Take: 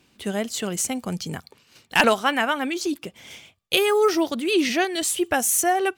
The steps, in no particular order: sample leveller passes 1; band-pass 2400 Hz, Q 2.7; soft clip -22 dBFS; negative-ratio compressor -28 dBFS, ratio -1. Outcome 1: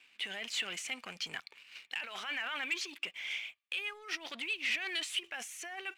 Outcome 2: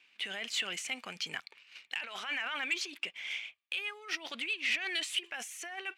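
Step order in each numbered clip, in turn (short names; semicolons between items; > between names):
negative-ratio compressor > soft clip > band-pass > sample leveller; negative-ratio compressor > sample leveller > band-pass > soft clip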